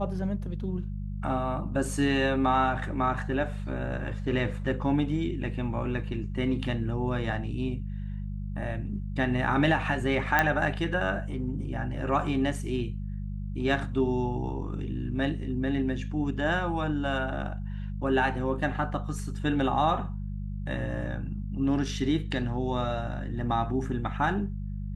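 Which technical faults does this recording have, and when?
hum 50 Hz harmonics 4 -34 dBFS
10.39 s: pop -9 dBFS

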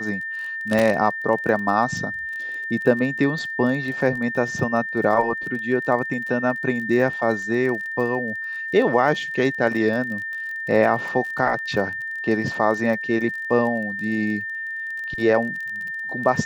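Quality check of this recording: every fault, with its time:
crackle 30 per s -30 dBFS
whine 1.8 kHz -27 dBFS
0.79 s: pop -8 dBFS

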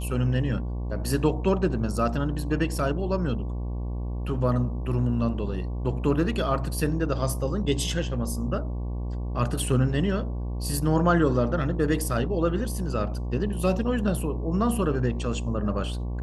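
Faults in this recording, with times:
buzz 60 Hz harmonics 19 -30 dBFS

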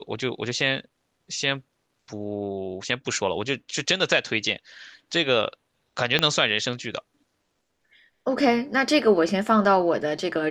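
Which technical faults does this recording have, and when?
6.19 s: pop -7 dBFS

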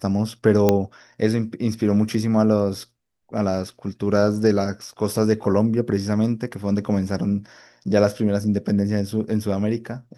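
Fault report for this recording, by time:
0.69 s: pop -4 dBFS

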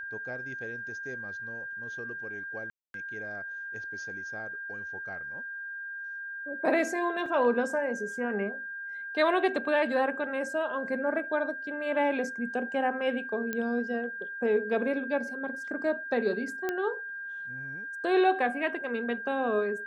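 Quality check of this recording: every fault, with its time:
whine 1.6 kHz -36 dBFS
2.70–2.94 s: dropout 242 ms
7.26 s: dropout 2.2 ms
13.53 s: pop -18 dBFS
16.69 s: pop -17 dBFS

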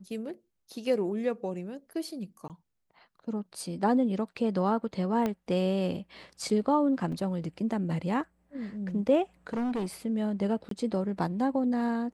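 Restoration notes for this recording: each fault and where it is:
2.48–2.50 s: dropout 18 ms
5.26 s: pop -17 dBFS
7.12 s: dropout 3.9 ms
9.47–9.86 s: clipped -27.5 dBFS
10.69–10.71 s: dropout 23 ms

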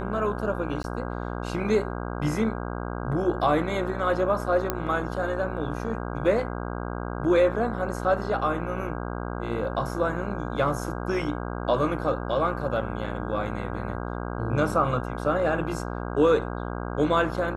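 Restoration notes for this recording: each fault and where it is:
buzz 60 Hz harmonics 27 -32 dBFS
0.83–0.84 s: dropout 11 ms
4.70 s: pop -10 dBFS

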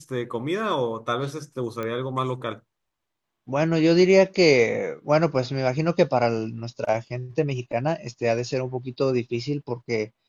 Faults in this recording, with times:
1.83 s: pop -18 dBFS

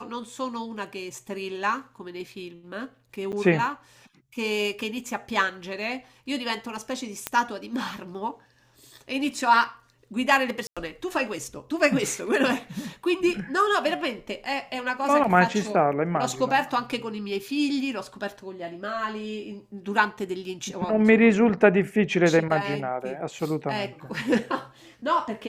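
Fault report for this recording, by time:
3.32–3.33 s: dropout 8.6 ms
7.27 s: pop -9 dBFS
10.67–10.77 s: dropout 96 ms

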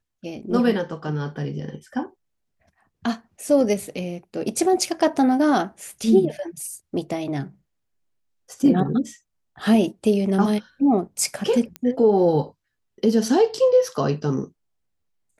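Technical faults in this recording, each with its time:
11.76 s: pop -16 dBFS

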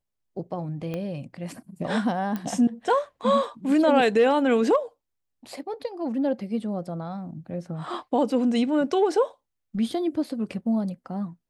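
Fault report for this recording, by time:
0.94 s: pop -19 dBFS
2.36 s: pop -18 dBFS

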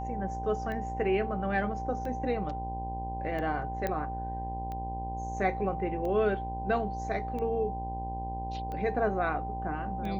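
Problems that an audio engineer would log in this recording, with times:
buzz 60 Hz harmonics 17 -38 dBFS
tick 45 rpm -27 dBFS
whine 780 Hz -36 dBFS
3.87 s: pop -18 dBFS

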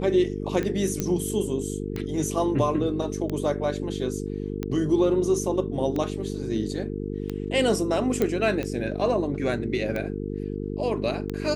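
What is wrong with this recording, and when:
buzz 50 Hz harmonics 9 -31 dBFS
tick 45 rpm -17 dBFS
1.00 s: pop -12 dBFS
8.22 s: pop -11 dBFS

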